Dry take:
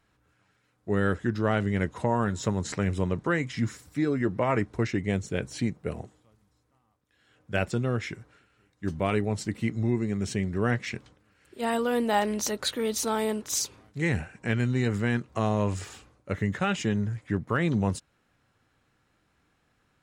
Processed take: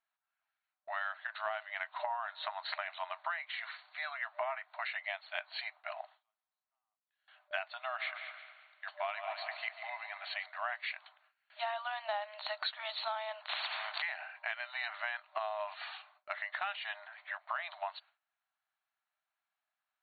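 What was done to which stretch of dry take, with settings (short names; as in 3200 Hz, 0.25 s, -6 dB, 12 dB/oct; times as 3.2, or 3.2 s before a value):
7.83–10.46 multi-head echo 71 ms, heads second and third, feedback 43%, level -12.5 dB
13.49–14.02 spectral compressor 10:1
whole clip: FFT band-pass 600–4500 Hz; gate with hold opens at -55 dBFS; compressor 8:1, threshold -37 dBFS; gain +3 dB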